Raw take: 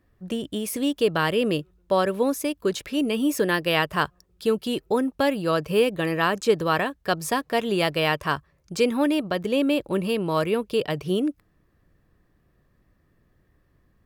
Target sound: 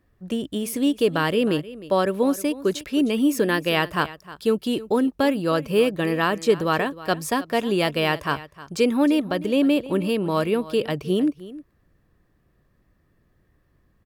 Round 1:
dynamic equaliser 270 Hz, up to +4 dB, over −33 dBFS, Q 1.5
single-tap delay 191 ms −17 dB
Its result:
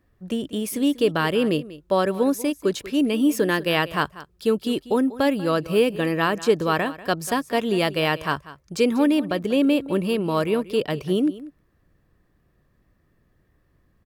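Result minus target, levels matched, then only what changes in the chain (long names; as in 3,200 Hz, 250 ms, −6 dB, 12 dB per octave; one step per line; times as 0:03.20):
echo 119 ms early
change: single-tap delay 310 ms −17 dB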